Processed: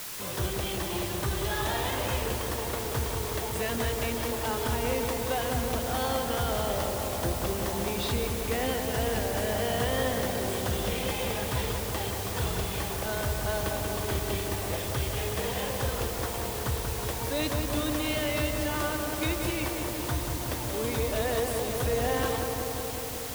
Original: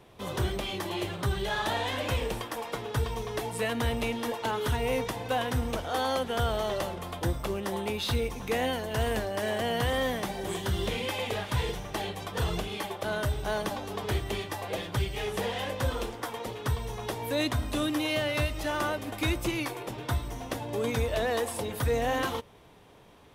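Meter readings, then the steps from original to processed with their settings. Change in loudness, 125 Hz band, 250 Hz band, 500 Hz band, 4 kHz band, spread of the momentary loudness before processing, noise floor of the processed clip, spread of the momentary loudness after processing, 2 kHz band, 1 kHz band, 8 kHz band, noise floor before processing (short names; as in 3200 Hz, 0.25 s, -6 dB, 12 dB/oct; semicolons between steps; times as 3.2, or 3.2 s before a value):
+1.5 dB, +0.5 dB, +0.5 dB, +0.5 dB, +0.5 dB, 6 LU, -34 dBFS, 3 LU, 0.0 dB, 0.0 dB, +7.0 dB, -43 dBFS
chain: requantised 6-bit, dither triangular; on a send: darkening echo 0.183 s, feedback 83%, low-pass 2200 Hz, level -4.5 dB; on the sum: gain -2.5 dB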